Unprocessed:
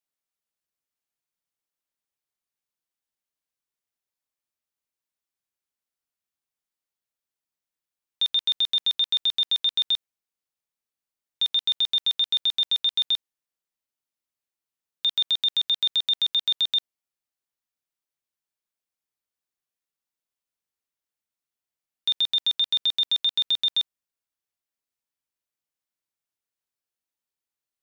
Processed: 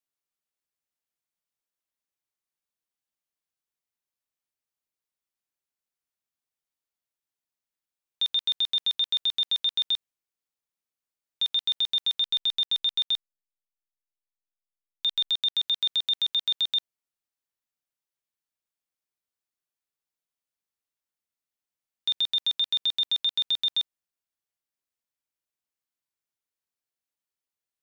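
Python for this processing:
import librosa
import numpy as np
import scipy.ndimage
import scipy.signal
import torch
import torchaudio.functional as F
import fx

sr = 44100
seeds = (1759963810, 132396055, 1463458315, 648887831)

y = fx.delta_hold(x, sr, step_db=-51.5, at=(12.2, 15.6), fade=0.02)
y = y * 10.0 ** (-2.5 / 20.0)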